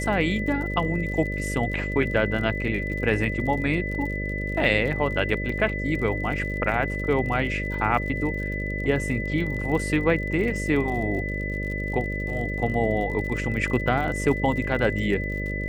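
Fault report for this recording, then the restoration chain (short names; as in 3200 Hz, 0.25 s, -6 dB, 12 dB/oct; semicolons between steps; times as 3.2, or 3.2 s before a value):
buzz 50 Hz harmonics 12 -30 dBFS
crackle 51/s -33 dBFS
tone 2000 Hz -31 dBFS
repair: de-click; notch 2000 Hz, Q 30; de-hum 50 Hz, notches 12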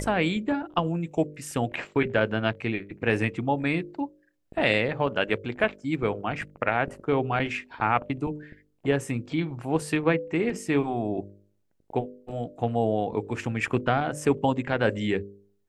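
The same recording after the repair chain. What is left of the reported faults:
none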